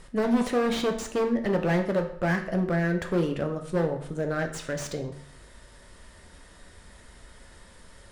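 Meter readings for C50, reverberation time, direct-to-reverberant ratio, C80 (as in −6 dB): 9.5 dB, 0.65 s, 4.0 dB, 12.5 dB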